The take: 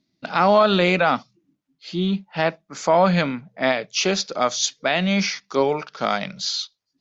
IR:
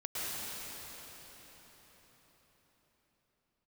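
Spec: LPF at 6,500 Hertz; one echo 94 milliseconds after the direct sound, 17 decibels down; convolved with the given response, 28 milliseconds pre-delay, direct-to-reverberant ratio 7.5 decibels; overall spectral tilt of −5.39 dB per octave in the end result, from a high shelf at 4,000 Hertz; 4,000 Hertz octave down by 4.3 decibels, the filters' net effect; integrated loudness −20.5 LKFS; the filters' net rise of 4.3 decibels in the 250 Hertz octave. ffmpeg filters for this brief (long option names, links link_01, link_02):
-filter_complex "[0:a]lowpass=6500,equalizer=frequency=250:width_type=o:gain=6.5,highshelf=frequency=4000:gain=4.5,equalizer=frequency=4000:width_type=o:gain=-7.5,aecho=1:1:94:0.141,asplit=2[link_01][link_02];[1:a]atrim=start_sample=2205,adelay=28[link_03];[link_02][link_03]afir=irnorm=-1:irlink=0,volume=-13dB[link_04];[link_01][link_04]amix=inputs=2:normalize=0,volume=-1dB"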